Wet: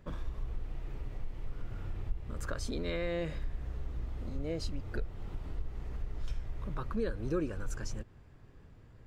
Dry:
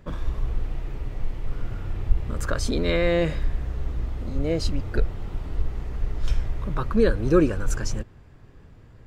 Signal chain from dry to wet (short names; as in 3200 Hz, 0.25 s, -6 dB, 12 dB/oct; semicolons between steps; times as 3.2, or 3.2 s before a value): compressor 2:1, threshold -28 dBFS, peak gain reduction 10 dB; gain -7 dB